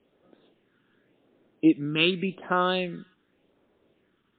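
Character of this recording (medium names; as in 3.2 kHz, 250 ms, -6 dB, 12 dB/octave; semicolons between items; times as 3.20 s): phasing stages 8, 0.88 Hz, lowest notch 630–2900 Hz; a quantiser's noise floor 12-bit, dither none; MP3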